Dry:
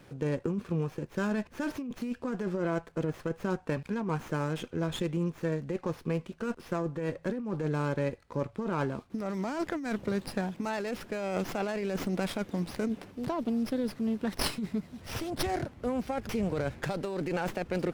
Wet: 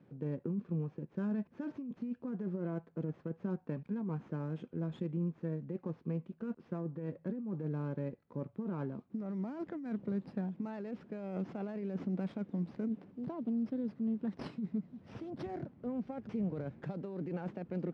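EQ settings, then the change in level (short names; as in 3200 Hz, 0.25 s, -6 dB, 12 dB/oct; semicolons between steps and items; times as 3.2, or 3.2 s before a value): band-pass 180 Hz, Q 1.5; air absorption 98 m; tilt +3 dB/oct; +4.5 dB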